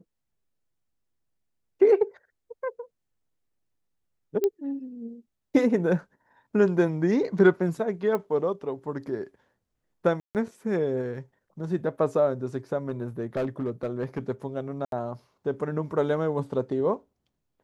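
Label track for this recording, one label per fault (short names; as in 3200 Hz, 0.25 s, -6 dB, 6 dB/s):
4.440000	4.440000	pop -14 dBFS
8.150000	8.150000	pop -17 dBFS
10.200000	10.350000	gap 0.148 s
12.890000	14.190000	clipped -23 dBFS
14.850000	14.920000	gap 72 ms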